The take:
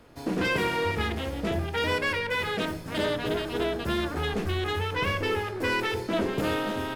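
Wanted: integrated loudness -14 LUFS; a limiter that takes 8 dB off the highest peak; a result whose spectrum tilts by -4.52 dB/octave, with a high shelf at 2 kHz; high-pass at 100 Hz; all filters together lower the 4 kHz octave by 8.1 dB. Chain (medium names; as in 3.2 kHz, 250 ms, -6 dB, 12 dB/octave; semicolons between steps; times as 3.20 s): high-pass 100 Hz; treble shelf 2 kHz -4.5 dB; peaking EQ 4 kHz -7 dB; trim +19 dB; peak limiter -5 dBFS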